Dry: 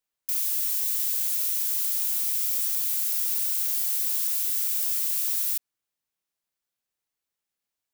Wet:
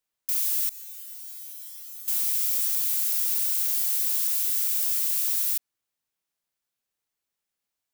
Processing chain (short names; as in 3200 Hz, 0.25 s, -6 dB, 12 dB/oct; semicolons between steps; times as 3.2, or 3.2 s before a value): 0.69–2.08 resonator 110 Hz, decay 0.53 s, harmonics odd, mix 100%; gain +1 dB